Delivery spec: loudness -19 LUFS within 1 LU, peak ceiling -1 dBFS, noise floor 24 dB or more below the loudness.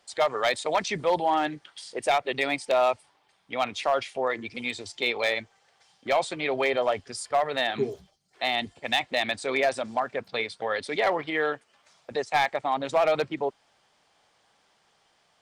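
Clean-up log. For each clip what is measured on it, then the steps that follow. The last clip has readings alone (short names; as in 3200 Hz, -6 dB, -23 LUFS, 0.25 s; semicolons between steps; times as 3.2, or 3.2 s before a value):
clipped 0.4%; flat tops at -15.5 dBFS; loudness -27.0 LUFS; peak -15.5 dBFS; loudness target -19.0 LUFS
-> clip repair -15.5 dBFS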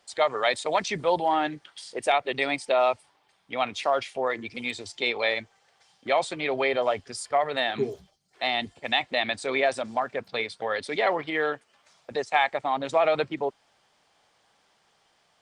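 clipped 0.0%; loudness -27.0 LUFS; peak -8.0 dBFS; loudness target -19.0 LUFS
-> gain +8 dB; limiter -1 dBFS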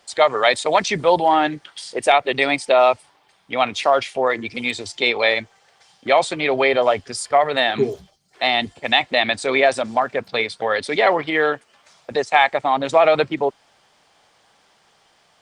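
loudness -19.0 LUFS; peak -1.0 dBFS; noise floor -59 dBFS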